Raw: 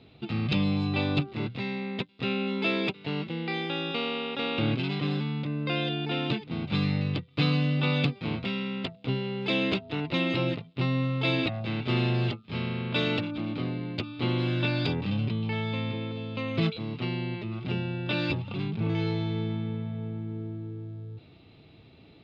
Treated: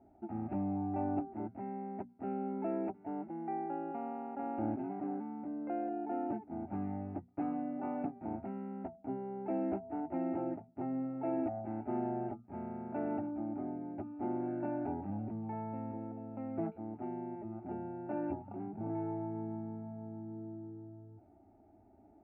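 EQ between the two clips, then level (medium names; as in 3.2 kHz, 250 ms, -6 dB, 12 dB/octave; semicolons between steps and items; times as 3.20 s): four-pole ladder low-pass 1 kHz, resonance 50%; hum notches 60/120/180/240 Hz; static phaser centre 720 Hz, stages 8; +4.0 dB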